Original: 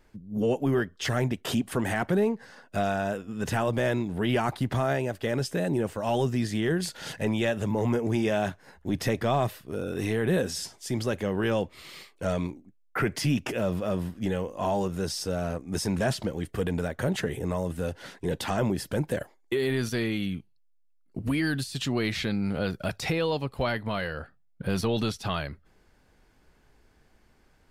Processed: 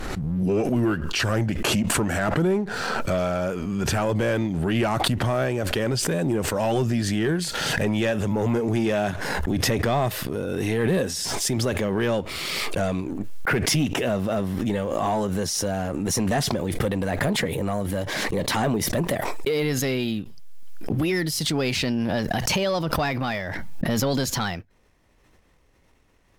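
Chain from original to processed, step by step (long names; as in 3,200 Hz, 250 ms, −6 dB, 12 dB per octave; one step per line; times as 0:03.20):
gliding playback speed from 87% → 123%
leveller curve on the samples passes 1
background raised ahead of every attack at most 20 dB per second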